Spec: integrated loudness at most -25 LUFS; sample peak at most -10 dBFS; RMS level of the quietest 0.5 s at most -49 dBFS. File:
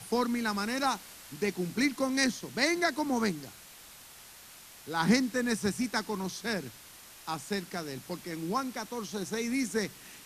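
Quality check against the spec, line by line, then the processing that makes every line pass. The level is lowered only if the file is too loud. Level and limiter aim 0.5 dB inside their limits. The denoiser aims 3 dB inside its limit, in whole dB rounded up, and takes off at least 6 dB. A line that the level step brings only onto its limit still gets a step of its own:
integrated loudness -31.5 LUFS: OK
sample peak -11.0 dBFS: OK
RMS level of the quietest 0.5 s -52 dBFS: OK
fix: none

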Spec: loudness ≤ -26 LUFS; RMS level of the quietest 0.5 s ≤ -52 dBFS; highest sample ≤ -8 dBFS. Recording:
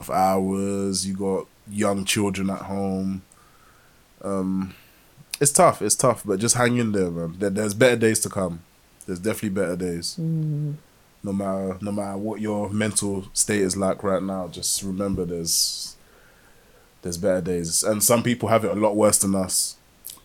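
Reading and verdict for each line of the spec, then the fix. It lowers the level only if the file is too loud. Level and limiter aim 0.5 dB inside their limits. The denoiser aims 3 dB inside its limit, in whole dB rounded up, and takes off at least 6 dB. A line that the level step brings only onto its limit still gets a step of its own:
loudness -22.5 LUFS: fail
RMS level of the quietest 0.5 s -55 dBFS: OK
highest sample -5.0 dBFS: fail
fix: gain -4 dB

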